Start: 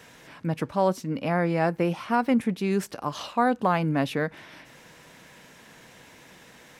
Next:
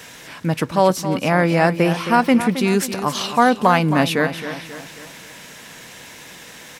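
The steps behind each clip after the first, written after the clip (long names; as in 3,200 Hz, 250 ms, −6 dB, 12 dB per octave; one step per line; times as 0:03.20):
high-shelf EQ 2,100 Hz +8 dB
on a send: repeating echo 269 ms, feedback 47%, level −11 dB
on the sum: level +7 dB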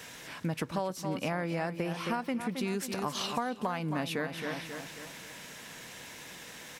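downward compressor 12 to 1, threshold −22 dBFS, peak gain reduction 14 dB
level −7 dB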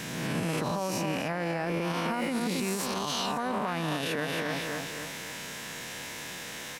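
peak hold with a rise ahead of every peak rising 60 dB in 1.53 s
brickwall limiter −25.5 dBFS, peak gain reduction 10.5 dB
level +4 dB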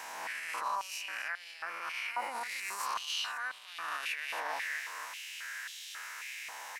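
parametric band 3,500 Hz −6.5 dB 0.43 octaves
high-pass on a step sequencer 3.7 Hz 880–3,400 Hz
level −6.5 dB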